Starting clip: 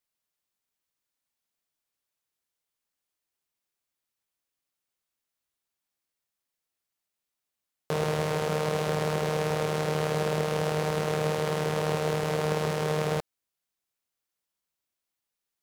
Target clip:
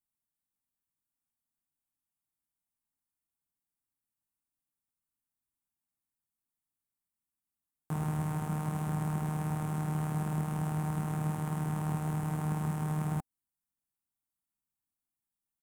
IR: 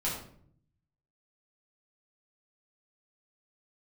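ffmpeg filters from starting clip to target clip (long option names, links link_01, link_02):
-af "firequalizer=gain_entry='entry(280,0);entry(490,-25);entry(780,-6);entry(2100,-15);entry(4500,-23);entry(8300,-4)':delay=0.05:min_phase=1"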